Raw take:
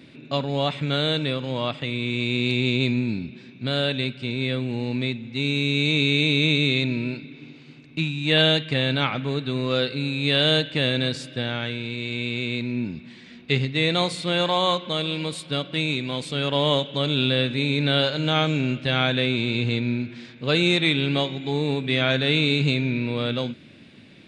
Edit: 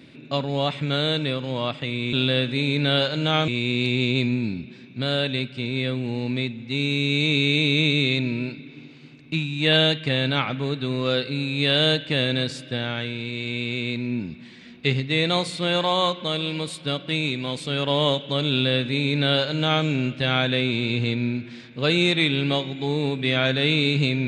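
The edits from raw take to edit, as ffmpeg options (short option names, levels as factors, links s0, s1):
-filter_complex "[0:a]asplit=3[s0][s1][s2];[s0]atrim=end=2.132[s3];[s1]atrim=start=17.148:end=18.502[s4];[s2]atrim=start=2.128[s5];[s3][s4]acrossfade=d=0.004:c1=hsin:c2=hsin[s6];[s6][s5]acrossfade=d=0.004:c1=hsin:c2=hsin"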